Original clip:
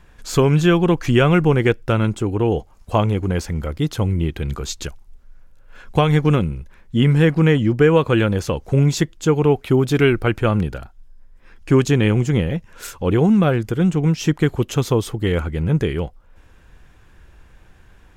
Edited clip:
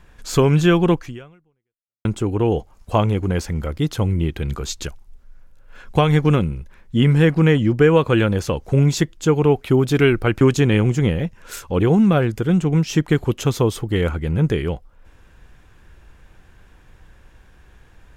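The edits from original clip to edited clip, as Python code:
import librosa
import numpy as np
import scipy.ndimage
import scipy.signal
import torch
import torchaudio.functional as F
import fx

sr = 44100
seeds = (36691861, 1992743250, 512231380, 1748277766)

y = fx.edit(x, sr, fx.fade_out_span(start_s=0.94, length_s=1.11, curve='exp'),
    fx.cut(start_s=10.41, length_s=1.31), tone=tone)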